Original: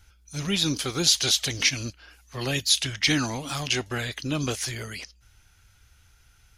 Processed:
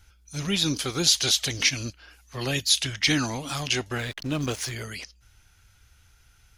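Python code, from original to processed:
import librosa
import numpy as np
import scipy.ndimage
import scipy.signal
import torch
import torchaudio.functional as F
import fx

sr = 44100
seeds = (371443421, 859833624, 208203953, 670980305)

y = fx.backlash(x, sr, play_db=-33.5, at=(3.97, 4.72))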